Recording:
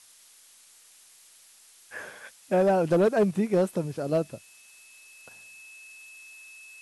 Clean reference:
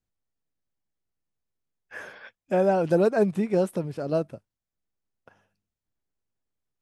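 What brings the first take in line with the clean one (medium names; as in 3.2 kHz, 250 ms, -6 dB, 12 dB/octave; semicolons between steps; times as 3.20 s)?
clip repair -16 dBFS; band-stop 2.6 kHz, Q 30; noise print and reduce 29 dB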